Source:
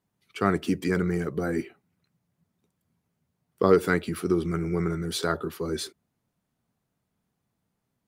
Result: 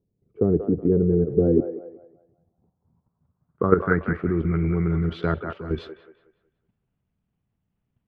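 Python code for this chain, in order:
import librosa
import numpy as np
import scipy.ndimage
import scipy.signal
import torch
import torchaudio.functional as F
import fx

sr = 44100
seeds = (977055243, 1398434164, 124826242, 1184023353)

y = fx.riaa(x, sr, side='playback')
y = fx.level_steps(y, sr, step_db=11)
y = fx.echo_wet_bandpass(y, sr, ms=185, feedback_pct=31, hz=970.0, wet_db=-5.0)
y = fx.filter_sweep_lowpass(y, sr, from_hz=460.0, to_hz=2900.0, start_s=1.68, end_s=4.98, q=3.2)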